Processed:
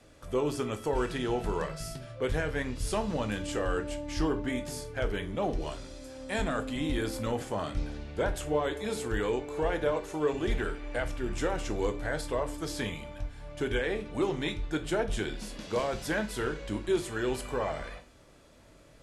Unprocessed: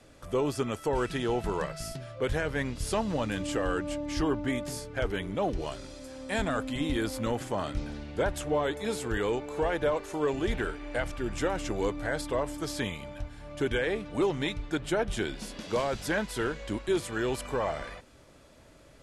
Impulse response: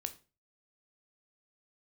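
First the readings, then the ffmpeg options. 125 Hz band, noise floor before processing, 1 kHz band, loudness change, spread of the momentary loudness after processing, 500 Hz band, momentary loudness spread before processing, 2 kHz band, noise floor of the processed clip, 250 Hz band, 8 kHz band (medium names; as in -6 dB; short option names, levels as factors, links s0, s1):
-0.5 dB, -55 dBFS, -1.5 dB, -1.0 dB, 6 LU, -1.0 dB, 7 LU, -1.5 dB, -56 dBFS, -1.5 dB, -1.5 dB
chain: -filter_complex "[1:a]atrim=start_sample=2205[s0];[0:a][s0]afir=irnorm=-1:irlink=0"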